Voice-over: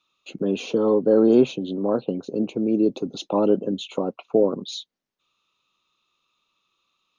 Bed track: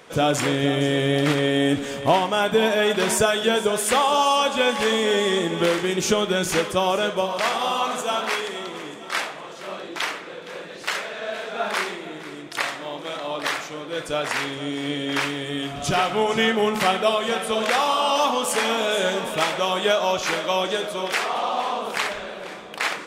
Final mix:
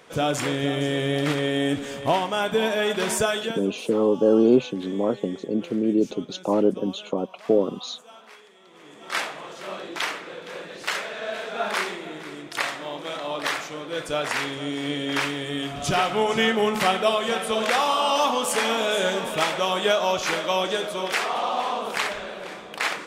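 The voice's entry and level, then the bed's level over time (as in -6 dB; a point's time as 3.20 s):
3.15 s, -1.0 dB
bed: 3.38 s -3.5 dB
3.76 s -23 dB
8.59 s -23 dB
9.16 s -1 dB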